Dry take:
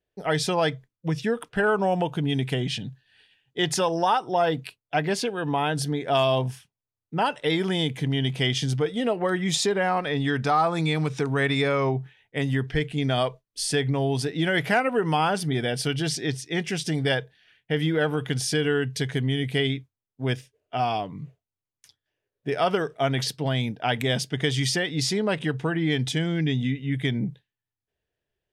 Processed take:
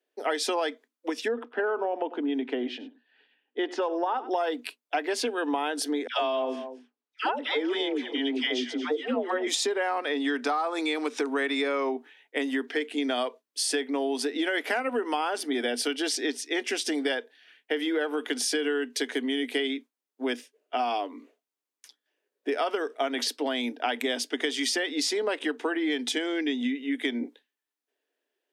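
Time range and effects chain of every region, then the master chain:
1.28–4.31 tape spacing loss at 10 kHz 35 dB + echo 97 ms -18 dB
6.07–9.47 air absorption 130 m + dispersion lows, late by 0.124 s, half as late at 930 Hz + echo 0.231 s -16.5 dB
whole clip: Chebyshev high-pass 240 Hz, order 8; compressor, threshold -28 dBFS; gain +3.5 dB

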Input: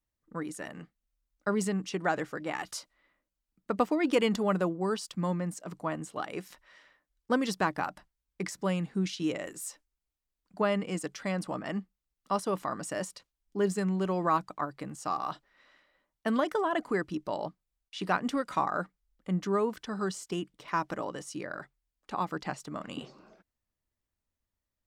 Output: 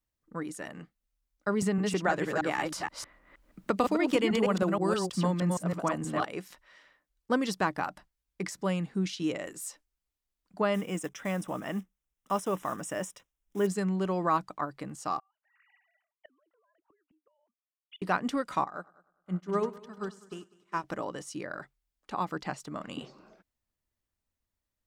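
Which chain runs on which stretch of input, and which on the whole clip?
1.62–6.25 reverse delay 0.158 s, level -3 dB + three-band squash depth 70%
10.74–13.67 block floating point 5-bit + Butterworth band-stop 4400 Hz, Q 3
15.19–18.02 sine-wave speech + compressor 8:1, threshold -39 dBFS + flipped gate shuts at -39 dBFS, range -31 dB
18.64–20.84 multi-head echo 0.1 s, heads first and second, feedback 60%, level -12 dB + upward expander 2.5:1, over -45 dBFS
whole clip: dry

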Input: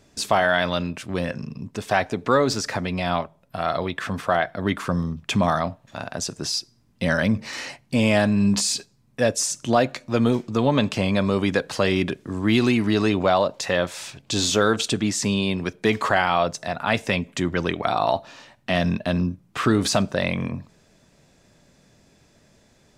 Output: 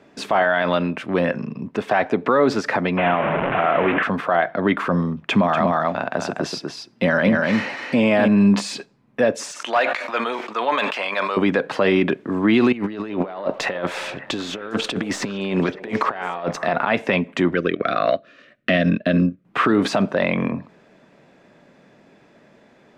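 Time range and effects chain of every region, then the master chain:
2.97–4.03 delta modulation 16 kbps, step -21 dBFS + short-mantissa float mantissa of 6-bit
5.26–8.28 HPF 53 Hz + echo 0.242 s -4.5 dB
9.51–11.37 HPF 990 Hz + hard clip -20 dBFS + sustainer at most 45 dB/s
12.72–16.88 half-wave gain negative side -3 dB + negative-ratio compressor -28 dBFS, ratio -0.5 + delay with a stepping band-pass 0.277 s, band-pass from 590 Hz, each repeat 1.4 oct, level -10 dB
17.54–19.45 transient shaper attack +11 dB, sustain -10 dB + Butterworth band-stop 870 Hz, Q 1.5
whole clip: three-band isolator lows -21 dB, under 170 Hz, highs -20 dB, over 2900 Hz; limiter -16.5 dBFS; gain +8.5 dB

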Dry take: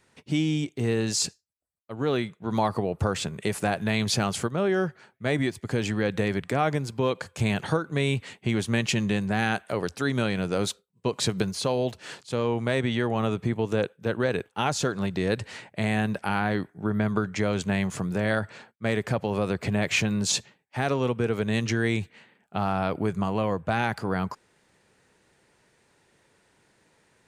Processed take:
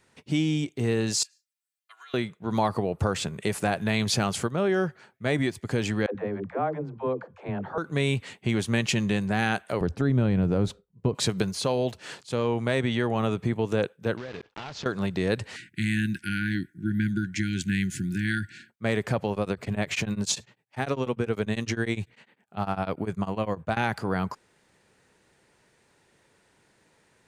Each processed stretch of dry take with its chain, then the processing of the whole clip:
1.23–2.14 HPF 1400 Hz 24 dB/oct + comb 2.9 ms, depth 99% + compressor 12:1, threshold -44 dBFS
6.06–7.78 LPF 1000 Hz + low shelf 210 Hz -11.5 dB + dispersion lows, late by 90 ms, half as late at 350 Hz
9.81–11.15 tilt -4 dB/oct + compressor 2:1, threshold -22 dBFS
14.17–14.86 block floating point 3-bit + LPF 5000 Hz 24 dB/oct + compressor, threshold -34 dBFS
15.56–18.7 brick-wall FIR band-stop 380–1400 Hz + high shelf 10000 Hz +4.5 dB
19.31–23.77 notches 60/120 Hz + beating tremolo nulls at 10 Hz
whole clip: dry

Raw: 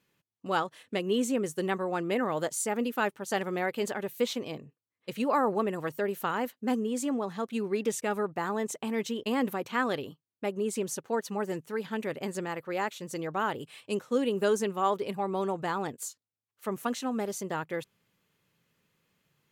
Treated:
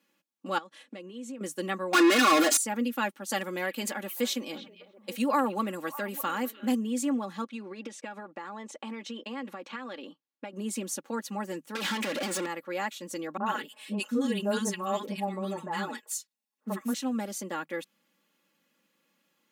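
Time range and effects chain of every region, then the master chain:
0.58–1.41 LPF 9100 Hz + compressor, threshold -41 dBFS
1.93–2.57 overdrive pedal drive 37 dB, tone 6500 Hz, clips at -17 dBFS + comb 2.8 ms, depth 89%
3.29–6.75 high shelf 5800 Hz +7.5 dB + delay with a stepping band-pass 0.301 s, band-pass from 2800 Hz, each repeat -1.4 oct, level -12 dB
7.44–10.53 HPF 350 Hz 6 dB/oct + compressor 4:1, threshold -35 dBFS + air absorption 89 m
11.75–12.46 compressor 5:1, threshold -38 dBFS + overdrive pedal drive 35 dB, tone 6800 Hz, clips at -23 dBFS
13.37–16.94 comb 4.7 ms, depth 78% + three bands offset in time lows, mids, highs 30/90 ms, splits 310/1200 Hz
whole clip: steep high-pass 170 Hz; comb 3.6 ms, depth 72%; dynamic EQ 600 Hz, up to -5 dB, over -40 dBFS, Q 0.73

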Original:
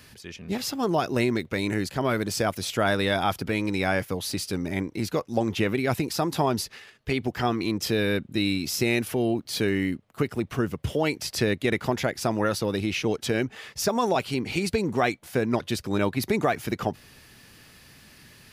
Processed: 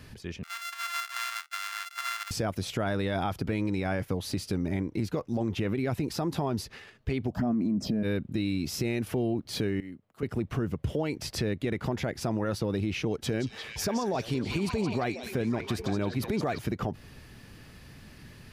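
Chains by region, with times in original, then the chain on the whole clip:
0.43–2.31 sample sorter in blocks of 64 samples + steep high-pass 1200 Hz
7.32–8.03 bell 260 Hz +9 dB 0.21 oct + small resonant body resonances 210/620 Hz, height 15 dB + envelope phaser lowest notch 310 Hz, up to 3700 Hz, full sweep at -12.5 dBFS
9.8–10.23 compressor 2:1, threshold -48 dBFS + low shelf 170 Hz -9 dB + three-band expander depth 100%
13.06–16.59 high shelf 9600 Hz +4.5 dB + delay with a stepping band-pass 0.174 s, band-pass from 5400 Hz, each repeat -0.7 oct, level -0.5 dB
whole clip: tilt -2 dB/oct; limiter -16 dBFS; compressor 2:1, threshold -29 dBFS

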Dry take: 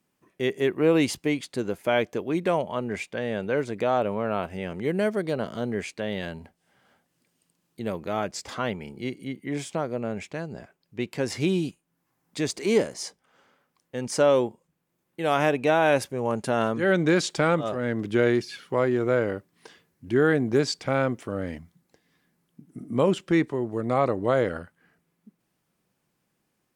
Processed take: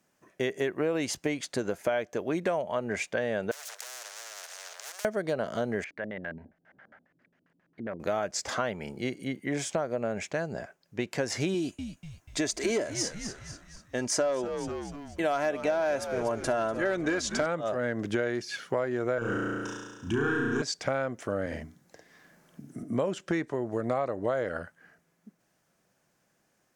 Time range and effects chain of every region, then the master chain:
3.51–5.05 minimum comb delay 1.5 ms + Bessel high-pass 1200 Hz, order 8 + spectral compressor 10:1
5.84–8 compressor 1.5:1, threshold -57 dBFS + LFO low-pass square 7.4 Hz 280–1900 Hz
11.54–17.46 hard clip -13 dBFS + comb 3 ms, depth 44% + frequency-shifting echo 0.244 s, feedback 50%, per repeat -98 Hz, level -13 dB
19.18–20.62 sample leveller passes 1 + fixed phaser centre 3000 Hz, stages 8 + flutter echo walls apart 5.9 m, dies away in 1.4 s
21.46–22.83 notches 60/120/180/240/300/360/420 Hz + doubler 50 ms -3.5 dB + three-band squash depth 40%
whole clip: fifteen-band EQ 630 Hz +8 dB, 1600 Hz +7 dB, 6300 Hz +8 dB; compressor 6:1, threshold -26 dBFS

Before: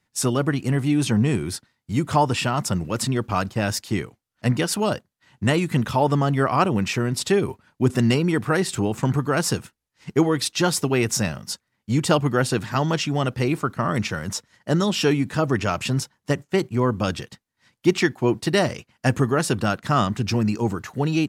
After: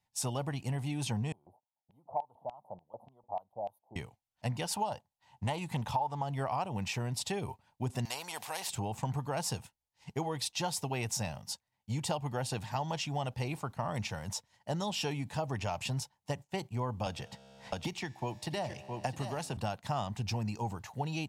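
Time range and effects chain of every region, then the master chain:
1.32–3.96 inverse Chebyshev band-stop 1600–7900 Hz + LFO band-pass square 3.4 Hz 670–3000 Hz
4.7–6.24 bell 880 Hz +6.5 dB 0.59 oct + Doppler distortion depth 0.12 ms
8.05–8.7 HPF 530 Hz + spectral compressor 2:1
17.06–19.57 resonator 67 Hz, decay 2 s, mix 40% + echo 0.663 s -11.5 dB + three-band squash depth 100%
whole clip: EQ curve 110 Hz 0 dB, 350 Hz -11 dB, 860 Hz +7 dB, 1300 Hz -10 dB, 2700 Hz -1 dB; compressor 6:1, threshold -22 dBFS; gain -8 dB

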